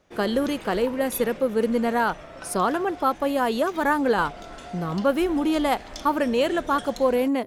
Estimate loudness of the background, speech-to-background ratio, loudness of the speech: -40.0 LUFS, 16.0 dB, -24.0 LUFS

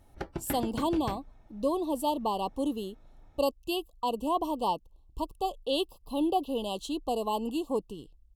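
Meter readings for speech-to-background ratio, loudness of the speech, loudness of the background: 7.0 dB, -32.0 LUFS, -39.0 LUFS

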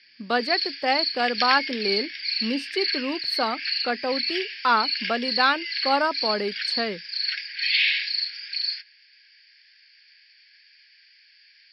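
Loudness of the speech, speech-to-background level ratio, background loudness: -26.0 LUFS, -0.5 dB, -25.5 LUFS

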